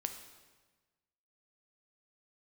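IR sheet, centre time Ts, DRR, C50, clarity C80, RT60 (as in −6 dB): 20 ms, 6.0 dB, 8.5 dB, 10.0 dB, 1.3 s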